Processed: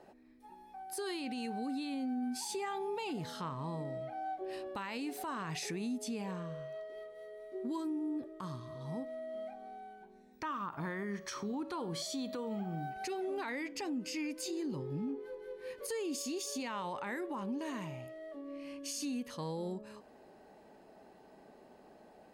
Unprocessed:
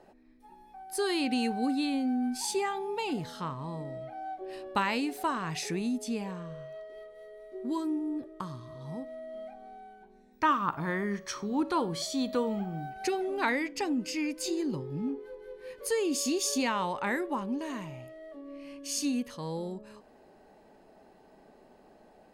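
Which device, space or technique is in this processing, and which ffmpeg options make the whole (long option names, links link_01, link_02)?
podcast mastering chain: -af "highpass=frequency=66:poles=1,deesser=0.6,acompressor=threshold=-33dB:ratio=4,alimiter=level_in=6.5dB:limit=-24dB:level=0:latency=1:release=37,volume=-6.5dB" -ar 44100 -c:a libmp3lame -b:a 112k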